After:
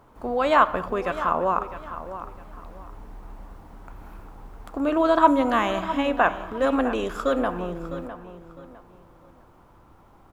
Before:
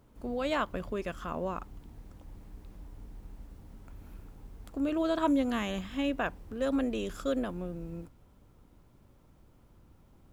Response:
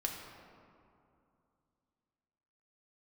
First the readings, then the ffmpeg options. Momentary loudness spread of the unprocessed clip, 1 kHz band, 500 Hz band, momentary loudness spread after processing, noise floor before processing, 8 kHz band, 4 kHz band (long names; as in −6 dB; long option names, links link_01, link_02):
23 LU, +15.5 dB, +10.0 dB, 18 LU, −61 dBFS, can't be measured, +6.0 dB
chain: -filter_complex "[0:a]equalizer=frequency=1000:width=0.68:gain=14,asplit=2[link_01][link_02];[link_02]adelay=656,lowpass=frequency=5000:poles=1,volume=-12.5dB,asplit=2[link_03][link_04];[link_04]adelay=656,lowpass=frequency=5000:poles=1,volume=0.28,asplit=2[link_05][link_06];[link_06]adelay=656,lowpass=frequency=5000:poles=1,volume=0.28[link_07];[link_01][link_03][link_05][link_07]amix=inputs=4:normalize=0,asplit=2[link_08][link_09];[1:a]atrim=start_sample=2205,afade=type=out:start_time=0.29:duration=0.01,atrim=end_sample=13230[link_10];[link_09][link_10]afir=irnorm=-1:irlink=0,volume=-9dB[link_11];[link_08][link_11]amix=inputs=2:normalize=0"